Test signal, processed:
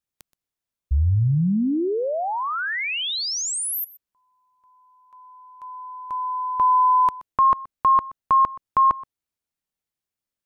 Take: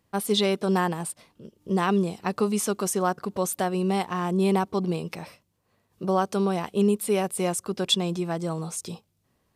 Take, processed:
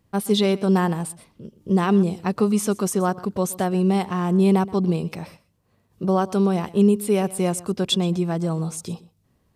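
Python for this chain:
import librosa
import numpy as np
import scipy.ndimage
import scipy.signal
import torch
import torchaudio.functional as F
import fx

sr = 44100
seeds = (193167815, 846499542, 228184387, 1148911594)

y = fx.low_shelf(x, sr, hz=310.0, db=9.0)
y = y + 10.0 ** (-19.5 / 20.0) * np.pad(y, (int(125 * sr / 1000.0), 0))[:len(y)]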